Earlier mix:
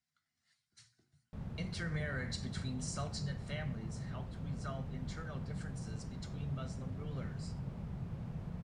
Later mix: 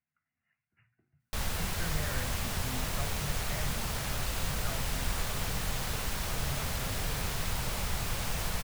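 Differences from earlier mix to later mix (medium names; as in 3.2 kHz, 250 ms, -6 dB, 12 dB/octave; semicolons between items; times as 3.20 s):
speech: add brick-wall FIR low-pass 2.9 kHz; background: remove band-pass filter 160 Hz, Q 1.5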